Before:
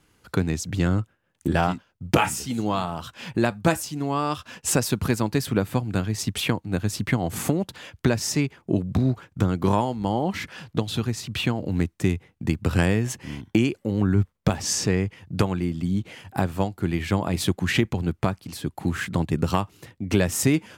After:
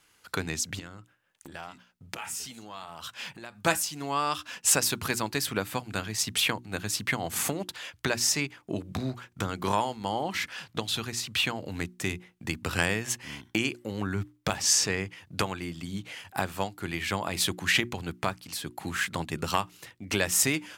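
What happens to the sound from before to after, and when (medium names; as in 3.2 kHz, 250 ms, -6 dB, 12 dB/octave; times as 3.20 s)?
0.79–3.62 s: compression 5:1, threshold -34 dBFS
whole clip: tilt shelf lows -7.5 dB, about 630 Hz; hum notches 60/120/180/240/300/360 Hz; trim -4.5 dB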